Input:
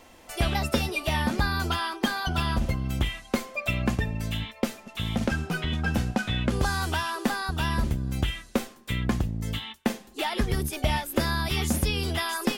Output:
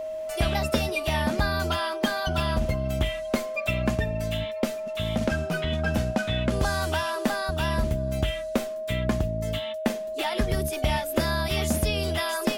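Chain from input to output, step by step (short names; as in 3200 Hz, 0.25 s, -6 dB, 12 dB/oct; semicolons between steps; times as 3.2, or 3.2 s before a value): whine 630 Hz -30 dBFS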